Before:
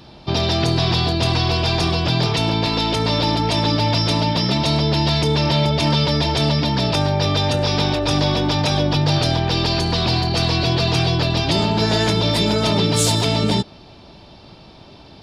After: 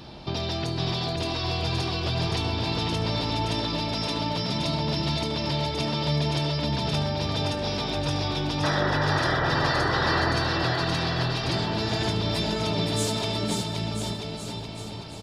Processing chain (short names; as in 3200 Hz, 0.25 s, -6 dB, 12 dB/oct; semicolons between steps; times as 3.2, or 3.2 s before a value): compressor 2:1, threshold -35 dBFS, peak gain reduction 12 dB; painted sound noise, 8.63–10.33, 260–2000 Hz -28 dBFS; on a send: bouncing-ball echo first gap 0.52 s, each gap 0.9×, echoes 5